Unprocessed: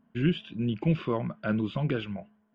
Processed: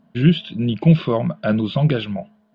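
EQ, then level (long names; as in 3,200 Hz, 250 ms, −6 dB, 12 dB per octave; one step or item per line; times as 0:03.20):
graphic EQ with 15 bands 160 Hz +8 dB, 630 Hz +8 dB, 4,000 Hz +12 dB
+5.5 dB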